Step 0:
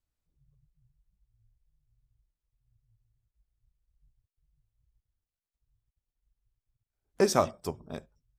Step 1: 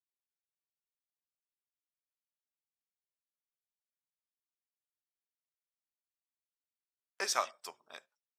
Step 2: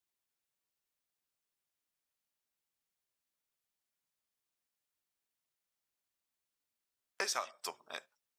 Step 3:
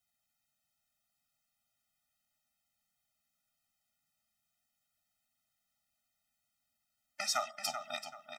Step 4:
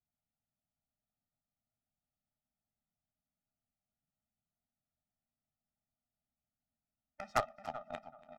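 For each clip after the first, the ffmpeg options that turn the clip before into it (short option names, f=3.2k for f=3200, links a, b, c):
-af "agate=range=-17dB:threshold=-58dB:ratio=16:detection=peak,highpass=1.4k,highshelf=f=8.3k:g=-9,volume=2dB"
-af "acompressor=threshold=-39dB:ratio=6,volume=6dB"
-filter_complex "[0:a]alimiter=level_in=1dB:limit=-24dB:level=0:latency=1:release=177,volume=-1dB,asplit=2[a][b];[b]adelay=384,lowpass=f=4.5k:p=1,volume=-7.5dB,asplit=2[c][d];[d]adelay=384,lowpass=f=4.5k:p=1,volume=0.31,asplit=2[e][f];[f]adelay=384,lowpass=f=4.5k:p=1,volume=0.31,asplit=2[g][h];[h]adelay=384,lowpass=f=4.5k:p=1,volume=0.31[i];[a][c][e][g][i]amix=inputs=5:normalize=0,afftfilt=real='re*eq(mod(floor(b*sr/1024/300),2),0)':imag='im*eq(mod(floor(b*sr/1024/300),2),0)':win_size=1024:overlap=0.75,volume=8.5dB"
-af "adynamicsmooth=sensitivity=1:basefreq=610,aeval=exprs='0.0668*(cos(1*acos(clip(val(0)/0.0668,-1,1)))-cos(1*PI/2))+0.00596*(cos(3*acos(clip(val(0)/0.0668,-1,1)))-cos(3*PI/2))+0.0168*(cos(6*acos(clip(val(0)/0.0668,-1,1)))-cos(6*PI/2))+0.00119*(cos(7*acos(clip(val(0)/0.0668,-1,1)))-cos(7*PI/2))+0.0119*(cos(8*acos(clip(val(0)/0.0668,-1,1)))-cos(8*PI/2))':c=same,aecho=1:1:285|570:0.0891|0.0267,volume=6.5dB"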